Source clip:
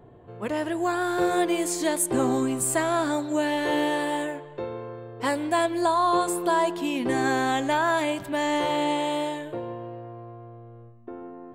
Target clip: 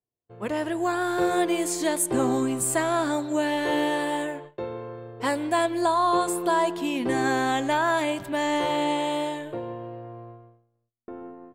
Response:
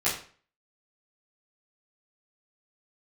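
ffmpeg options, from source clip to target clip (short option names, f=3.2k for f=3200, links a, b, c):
-af "agate=range=-44dB:threshold=-41dB:ratio=16:detection=peak"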